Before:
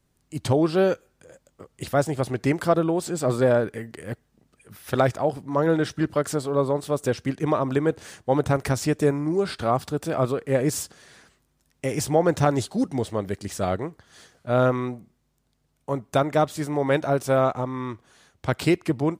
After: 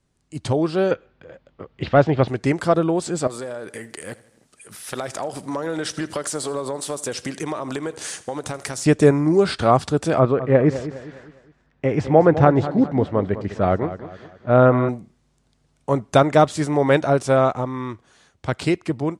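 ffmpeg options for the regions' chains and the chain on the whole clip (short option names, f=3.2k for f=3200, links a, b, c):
-filter_complex "[0:a]asettb=1/sr,asplit=3[a][b][c];[a]atrim=end=0.914[d];[b]atrim=start=0.91:end=2.28,asetpts=PTS-STARTPTS,afade=t=in:d=0.004:c=qsin,afade=t=out:st=1.366:d=0.004:c=qsin,lowpass=f=3.7k:w=0.5412,lowpass=f=3.7k:w=1.3066,acontrast=62[e];[c]atrim=start=2.276[f];[d][e]acrossfade=d=0.004:c1=hsin:c2=qsin[g];[g][f]acrossfade=d=0.004:c1=qsin:c2=hsin,asettb=1/sr,asplit=3[h][i][j];[h]atrim=end=3.274[k];[i]atrim=start=3.27:end=8.86,asetpts=PTS-STARTPTS,afade=t=in:d=0.004:c=qsin,afade=t=out:st=5.586:d=0.004:c=qsin,aemphasis=mode=production:type=bsi,acompressor=threshold=-32dB:ratio=6:attack=3.2:release=140:knee=1:detection=peak,aecho=1:1:81|162|243|324:0.112|0.0606|0.0327|0.0177,atrim=end_sample=246519[l];[j]atrim=start=8.856[m];[k][l]acrossfade=d=0.004:c1=hsin:c2=qsin[n];[n][m]acrossfade=d=0.004:c1=qsin:c2=hsin,asettb=1/sr,asplit=3[o][p][q];[o]atrim=end=10.194[r];[p]atrim=start=10.19:end=14.89,asetpts=PTS-STARTPTS,afade=t=in:d=0.004:c=qsin,afade=t=out:st=4.696:d=0.004:c=qsin,lowpass=2k,aecho=1:1:205|410|615|820:0.224|0.0895|0.0358|0.0143,atrim=end_sample=207270[s];[q]atrim=start=14.886[t];[r][s]acrossfade=d=0.004:c1=hsin:c2=qsin[u];[u][t]acrossfade=d=0.004:c1=qsin:c2=hsin,lowpass=f=9.7k:w=0.5412,lowpass=f=9.7k:w=1.3066,dynaudnorm=f=280:g=17:m=11.5dB"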